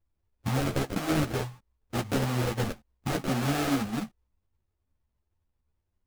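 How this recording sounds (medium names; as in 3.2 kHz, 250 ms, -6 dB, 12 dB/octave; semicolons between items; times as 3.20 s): aliases and images of a low sample rate 1 kHz, jitter 20%; a shimmering, thickened sound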